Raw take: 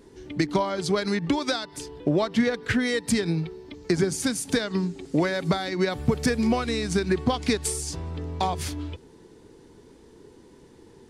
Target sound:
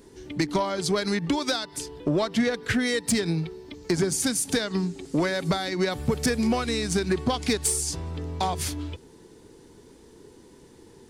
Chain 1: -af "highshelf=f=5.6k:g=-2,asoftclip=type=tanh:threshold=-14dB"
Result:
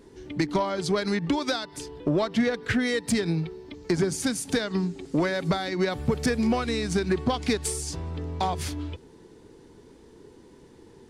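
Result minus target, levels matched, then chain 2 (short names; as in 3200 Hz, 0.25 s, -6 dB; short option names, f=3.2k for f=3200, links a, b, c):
8000 Hz band -5.0 dB
-af "highshelf=f=5.6k:g=7.5,asoftclip=type=tanh:threshold=-14dB"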